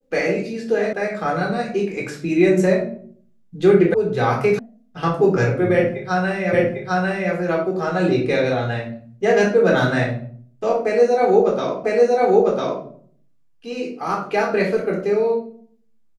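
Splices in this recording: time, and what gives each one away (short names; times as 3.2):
0.93 sound cut off
3.94 sound cut off
4.59 sound cut off
6.53 repeat of the last 0.8 s
11.84 repeat of the last 1 s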